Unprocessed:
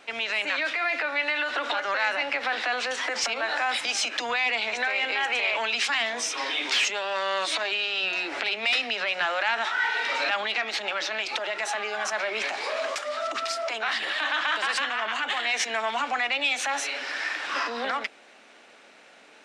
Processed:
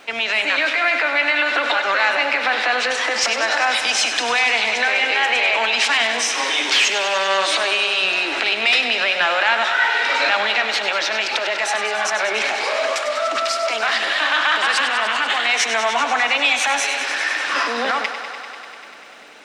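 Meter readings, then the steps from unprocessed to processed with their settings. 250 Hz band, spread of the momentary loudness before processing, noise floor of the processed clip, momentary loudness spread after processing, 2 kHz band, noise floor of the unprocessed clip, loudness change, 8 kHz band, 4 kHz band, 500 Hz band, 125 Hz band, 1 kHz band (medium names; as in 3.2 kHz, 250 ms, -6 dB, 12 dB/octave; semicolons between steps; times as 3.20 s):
+8.0 dB, 5 LU, -35 dBFS, 5 LU, +8.5 dB, -53 dBFS, +8.5 dB, +8.5 dB, +8.5 dB, +8.5 dB, no reading, +8.5 dB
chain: thinning echo 98 ms, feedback 83%, high-pass 220 Hz, level -10 dB; crackle 450 per s -57 dBFS; trim +7.5 dB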